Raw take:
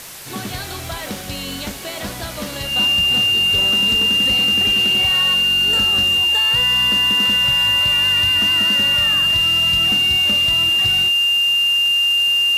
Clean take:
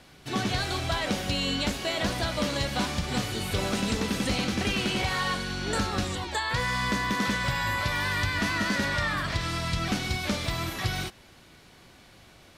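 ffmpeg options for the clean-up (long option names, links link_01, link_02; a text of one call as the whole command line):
ffmpeg -i in.wav -af "adeclick=threshold=4,bandreject=frequency=2800:width=30,afwtdn=0.02" out.wav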